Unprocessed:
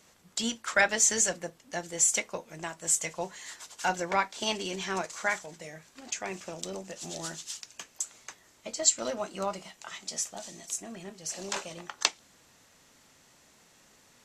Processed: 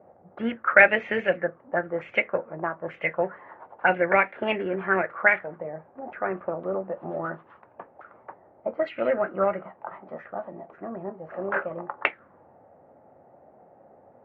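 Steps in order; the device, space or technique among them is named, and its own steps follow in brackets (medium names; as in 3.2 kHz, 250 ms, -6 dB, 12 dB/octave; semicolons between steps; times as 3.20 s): envelope filter bass rig (touch-sensitive low-pass 750–2600 Hz up, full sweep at -25 dBFS; cabinet simulation 89–2100 Hz, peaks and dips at 95 Hz +5 dB, 370 Hz +3 dB, 550 Hz +7 dB, 1 kHz -7 dB); trim +5 dB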